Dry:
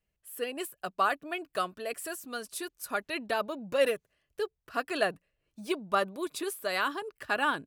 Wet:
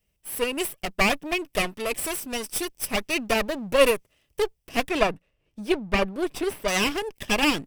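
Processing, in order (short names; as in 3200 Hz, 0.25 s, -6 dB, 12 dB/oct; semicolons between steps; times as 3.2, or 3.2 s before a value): minimum comb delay 0.36 ms; high shelf 4700 Hz +5 dB, from 4.89 s -8.5 dB, from 6.68 s +5 dB; gain +8.5 dB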